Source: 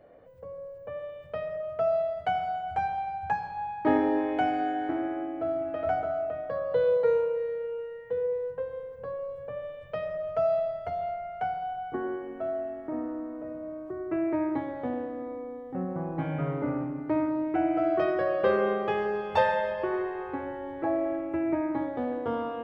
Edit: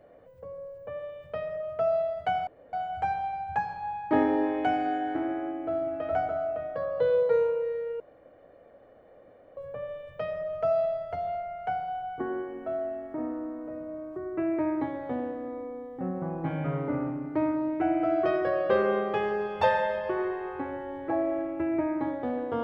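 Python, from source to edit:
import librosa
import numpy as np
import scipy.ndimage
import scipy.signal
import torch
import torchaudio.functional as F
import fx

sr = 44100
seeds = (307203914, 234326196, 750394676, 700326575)

y = fx.edit(x, sr, fx.insert_room_tone(at_s=2.47, length_s=0.26),
    fx.room_tone_fill(start_s=7.74, length_s=1.57), tone=tone)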